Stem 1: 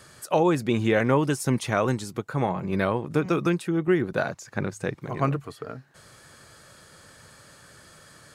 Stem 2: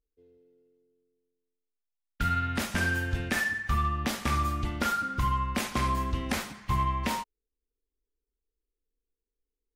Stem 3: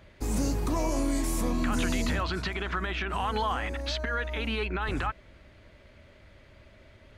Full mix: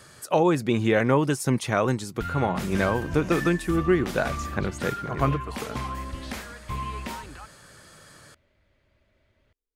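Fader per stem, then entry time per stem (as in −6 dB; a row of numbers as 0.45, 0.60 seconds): +0.5, −5.0, −13.0 decibels; 0.00, 0.00, 2.35 seconds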